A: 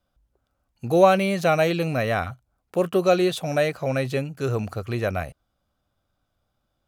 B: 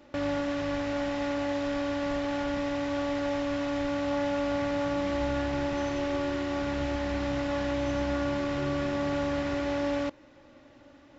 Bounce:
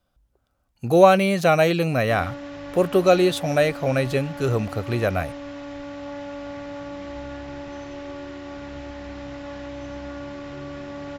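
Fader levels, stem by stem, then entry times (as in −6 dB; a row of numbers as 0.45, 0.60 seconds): +2.5, −5.5 decibels; 0.00, 1.95 seconds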